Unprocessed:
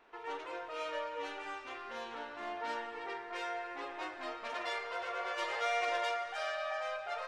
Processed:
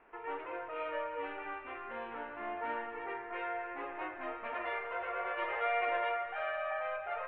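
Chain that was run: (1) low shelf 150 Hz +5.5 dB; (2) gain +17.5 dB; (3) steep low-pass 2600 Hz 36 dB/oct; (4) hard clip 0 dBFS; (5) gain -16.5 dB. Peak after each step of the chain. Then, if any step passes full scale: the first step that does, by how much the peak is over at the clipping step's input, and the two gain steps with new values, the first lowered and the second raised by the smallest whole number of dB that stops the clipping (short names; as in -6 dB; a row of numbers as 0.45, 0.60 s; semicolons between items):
-21.5, -4.0, -5.5, -5.5, -22.0 dBFS; no overload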